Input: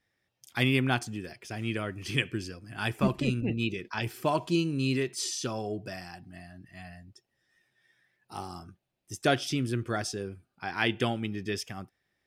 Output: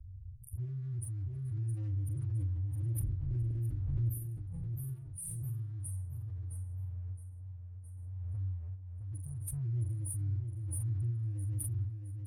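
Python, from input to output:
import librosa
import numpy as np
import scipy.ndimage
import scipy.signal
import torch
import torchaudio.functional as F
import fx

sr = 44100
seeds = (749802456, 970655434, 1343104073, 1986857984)

p1 = scipy.signal.sosfilt(scipy.signal.cheby1(5, 1.0, [100.0, 9800.0], 'bandstop', fs=sr, output='sos'), x)
p2 = fx.spec_gate(p1, sr, threshold_db=-15, keep='strong')
p3 = fx.env_lowpass(p2, sr, base_hz=1300.0, full_db=-43.5)
p4 = fx.dynamic_eq(p3, sr, hz=130.0, q=2.8, threshold_db=-59.0, ratio=4.0, max_db=5)
p5 = fx.leveller(p4, sr, passes=1)
p6 = 10.0 ** (-33.5 / 20.0) * np.tanh(p5 / 10.0 ** (-33.5 / 20.0))
p7 = fx.doubler(p6, sr, ms=43.0, db=-7.5)
p8 = p7 + fx.echo_feedback(p7, sr, ms=665, feedback_pct=36, wet_db=-6.0, dry=0)
p9 = fx.pre_swell(p8, sr, db_per_s=23.0)
y = p9 * 10.0 ** (6.0 / 20.0)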